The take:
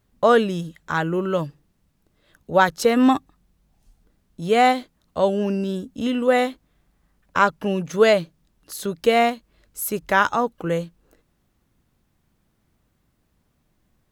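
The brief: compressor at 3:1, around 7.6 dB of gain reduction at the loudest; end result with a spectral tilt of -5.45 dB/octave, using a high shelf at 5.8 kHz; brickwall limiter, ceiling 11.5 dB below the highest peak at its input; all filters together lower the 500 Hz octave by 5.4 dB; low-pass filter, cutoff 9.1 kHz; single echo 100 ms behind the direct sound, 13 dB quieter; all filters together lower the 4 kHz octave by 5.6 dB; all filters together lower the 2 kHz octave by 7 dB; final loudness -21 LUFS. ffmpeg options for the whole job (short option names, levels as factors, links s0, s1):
-af "lowpass=9100,equalizer=f=500:t=o:g=-6,equalizer=f=2000:t=o:g=-9,equalizer=f=4000:t=o:g=-5,highshelf=f=5800:g=4.5,acompressor=threshold=0.0562:ratio=3,alimiter=level_in=1.19:limit=0.0631:level=0:latency=1,volume=0.841,aecho=1:1:100:0.224,volume=5.01"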